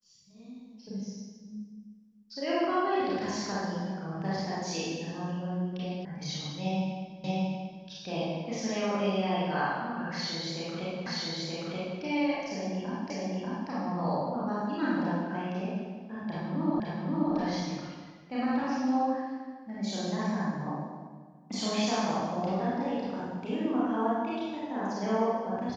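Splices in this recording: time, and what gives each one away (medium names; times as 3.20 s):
6.05 s: sound stops dead
7.24 s: repeat of the last 0.63 s
11.06 s: repeat of the last 0.93 s
13.10 s: repeat of the last 0.59 s
16.80 s: repeat of the last 0.53 s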